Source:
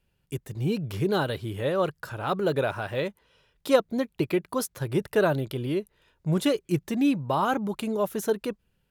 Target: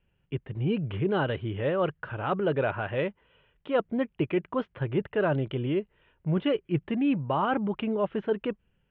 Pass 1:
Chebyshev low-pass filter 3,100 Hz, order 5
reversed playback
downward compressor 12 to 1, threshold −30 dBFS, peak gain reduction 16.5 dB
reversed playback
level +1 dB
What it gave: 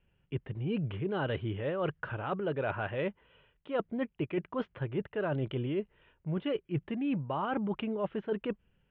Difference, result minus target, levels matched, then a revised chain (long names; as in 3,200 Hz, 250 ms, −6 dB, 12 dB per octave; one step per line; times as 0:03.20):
downward compressor: peak gain reduction +7.5 dB
Chebyshev low-pass filter 3,100 Hz, order 5
reversed playback
downward compressor 12 to 1, threshold −22 dBFS, peak gain reduction 9 dB
reversed playback
level +1 dB